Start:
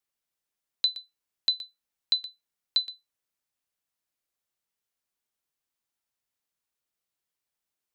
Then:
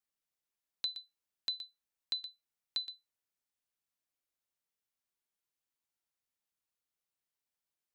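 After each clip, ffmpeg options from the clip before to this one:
-filter_complex "[0:a]acrossover=split=3100[a][b];[b]acompressor=threshold=-31dB:ratio=4:attack=1:release=60[c];[a][c]amix=inputs=2:normalize=0,volume=-5.5dB"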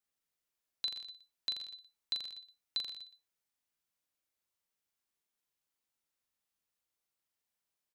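-af "aecho=1:1:40|84|132.4|185.6|244.2:0.631|0.398|0.251|0.158|0.1"

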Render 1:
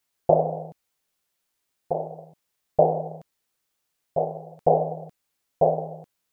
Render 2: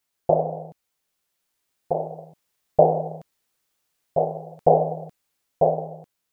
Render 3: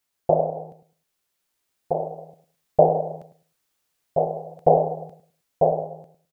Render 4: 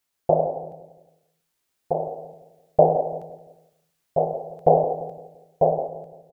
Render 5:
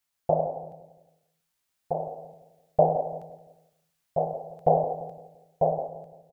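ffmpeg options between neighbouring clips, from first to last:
-af "dynaudnorm=f=300:g=9:m=11.5dB,volume=-1dB"
-filter_complex "[0:a]asplit=2[a][b];[b]adelay=104,lowpass=f=1k:p=1,volume=-10.5dB,asplit=2[c][d];[d]adelay=104,lowpass=f=1k:p=1,volume=0.23,asplit=2[e][f];[f]adelay=104,lowpass=f=1k:p=1,volume=0.23[g];[a][c][e][g]amix=inputs=4:normalize=0"
-filter_complex "[0:a]asplit=2[a][b];[b]adelay=171,lowpass=f=980:p=1,volume=-12dB,asplit=2[c][d];[d]adelay=171,lowpass=f=980:p=1,volume=0.44,asplit=2[e][f];[f]adelay=171,lowpass=f=980:p=1,volume=0.44,asplit=2[g][h];[h]adelay=171,lowpass=f=980:p=1,volume=0.44[i];[a][c][e][g][i]amix=inputs=5:normalize=0"
-af "equalizer=f=370:w=1.5:g=-7,volume=-2.5dB"

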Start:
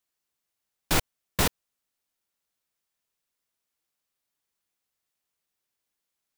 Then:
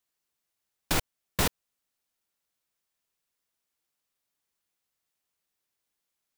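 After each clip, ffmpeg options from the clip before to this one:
-af "alimiter=limit=-14dB:level=0:latency=1:release=328"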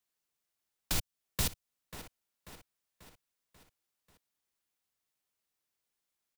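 -filter_complex "[0:a]aecho=1:1:539|1078|1617|2156|2695:0.126|0.068|0.0367|0.0198|0.0107,acrossover=split=160|3000[a][b][c];[b]acompressor=threshold=-40dB:ratio=3[d];[a][d][c]amix=inputs=3:normalize=0,volume=-3dB"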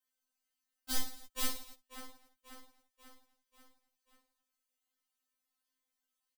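-filter_complex "[0:a]asplit=2[a][b];[b]aecho=0:1:20|50|95|162.5|263.8:0.631|0.398|0.251|0.158|0.1[c];[a][c]amix=inputs=2:normalize=0,afftfilt=real='re*3.46*eq(mod(b,12),0)':imag='im*3.46*eq(mod(b,12),0)':win_size=2048:overlap=0.75,volume=-1.5dB"

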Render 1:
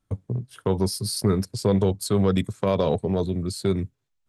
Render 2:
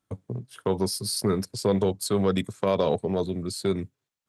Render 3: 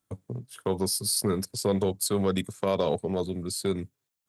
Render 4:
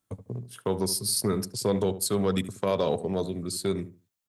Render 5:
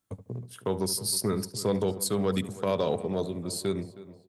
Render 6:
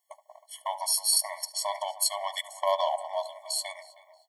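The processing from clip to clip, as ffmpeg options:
-af "highpass=f=220:p=1"
-af "highshelf=f=7.7k:g=11,volume=-2.5dB"
-filter_complex "[0:a]asplit=2[a][b];[b]adelay=74,lowpass=f=1.1k:p=1,volume=-12dB,asplit=2[c][d];[d]adelay=74,lowpass=f=1.1k:p=1,volume=0.24,asplit=2[e][f];[f]adelay=74,lowpass=f=1.1k:p=1,volume=0.24[g];[a][c][e][g]amix=inputs=4:normalize=0"
-filter_complex "[0:a]asplit=2[a][b];[b]adelay=316,lowpass=f=2.8k:p=1,volume=-17dB,asplit=2[c][d];[d]adelay=316,lowpass=f=2.8k:p=1,volume=0.51,asplit=2[e][f];[f]adelay=316,lowpass=f=2.8k:p=1,volume=0.51,asplit=2[g][h];[h]adelay=316,lowpass=f=2.8k:p=1,volume=0.51[i];[a][c][e][g][i]amix=inputs=5:normalize=0,volume=-1.5dB"
-af "afftfilt=real='re*eq(mod(floor(b*sr/1024/580),2),1)':imag='im*eq(mod(floor(b*sr/1024/580),2),1)':win_size=1024:overlap=0.75,volume=7.5dB"

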